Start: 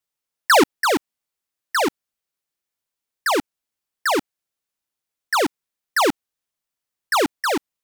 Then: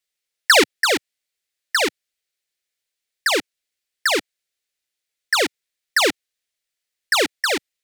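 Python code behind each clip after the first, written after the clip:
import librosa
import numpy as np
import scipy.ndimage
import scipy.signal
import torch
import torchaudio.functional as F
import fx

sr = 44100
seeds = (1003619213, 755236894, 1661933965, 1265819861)

y = fx.graphic_eq(x, sr, hz=(125, 250, 500, 1000, 2000, 4000, 8000), db=(-5, -5, 4, -9, 8, 6, 4))
y = y * 10.0 ** (-1.0 / 20.0)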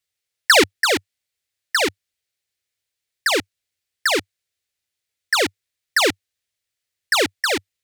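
y = fx.peak_eq(x, sr, hz=97.0, db=14.5, octaves=0.83)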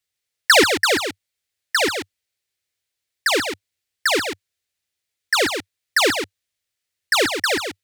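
y = x + 10.0 ** (-7.5 / 20.0) * np.pad(x, (int(137 * sr / 1000.0), 0))[:len(x)]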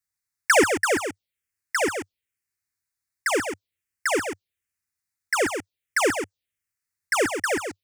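y = fx.env_phaser(x, sr, low_hz=540.0, high_hz=4000.0, full_db=-20.5)
y = y * 10.0 ** (-2.0 / 20.0)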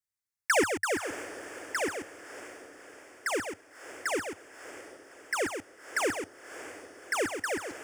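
y = fx.echo_diffused(x, sr, ms=607, feedback_pct=54, wet_db=-13.5)
y = y * 10.0 ** (-7.5 / 20.0)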